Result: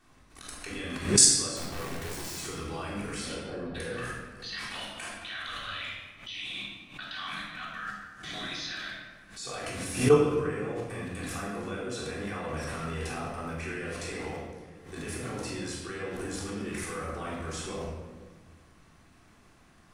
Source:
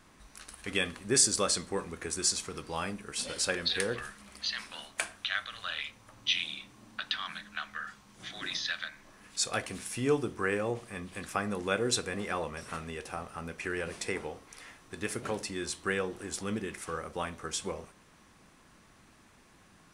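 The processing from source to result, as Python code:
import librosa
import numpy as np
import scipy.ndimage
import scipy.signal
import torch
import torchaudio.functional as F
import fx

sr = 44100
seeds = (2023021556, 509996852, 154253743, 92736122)

y = fx.lowpass(x, sr, hz=1100.0, slope=24, at=(3.33, 3.74), fade=0.02)
y = fx.level_steps(y, sr, step_db=24)
y = fx.overflow_wrap(y, sr, gain_db=42.0, at=(1.56, 2.37))
y = fx.room_shoebox(y, sr, seeds[0], volume_m3=1000.0, walls='mixed', distance_m=3.5)
y = fx.pre_swell(y, sr, db_per_s=120.0)
y = y * 10.0 ** (4.5 / 20.0)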